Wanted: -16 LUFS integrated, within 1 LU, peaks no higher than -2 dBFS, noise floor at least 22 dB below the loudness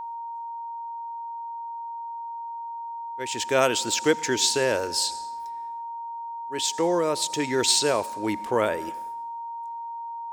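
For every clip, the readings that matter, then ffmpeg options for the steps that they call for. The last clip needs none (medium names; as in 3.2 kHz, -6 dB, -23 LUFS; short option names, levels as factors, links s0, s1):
steady tone 930 Hz; tone level -32 dBFS; loudness -27.0 LUFS; peak level -5.5 dBFS; loudness target -16.0 LUFS
-> -af "bandreject=f=930:w=30"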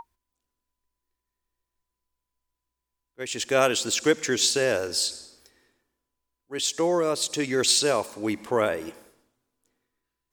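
steady tone not found; loudness -24.0 LUFS; peak level -6.0 dBFS; loudness target -16.0 LUFS
-> -af "volume=2.51,alimiter=limit=0.794:level=0:latency=1"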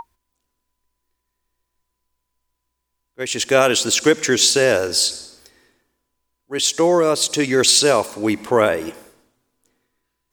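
loudness -16.5 LUFS; peak level -2.0 dBFS; noise floor -77 dBFS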